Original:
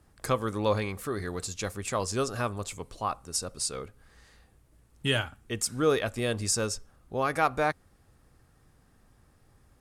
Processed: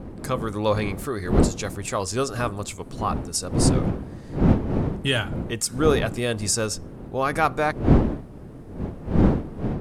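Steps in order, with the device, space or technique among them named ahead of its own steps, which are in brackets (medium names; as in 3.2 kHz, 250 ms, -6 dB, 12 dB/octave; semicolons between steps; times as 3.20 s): smartphone video outdoors (wind noise 260 Hz -29 dBFS; level rider gain up to 4.5 dB; AAC 128 kbps 44.1 kHz)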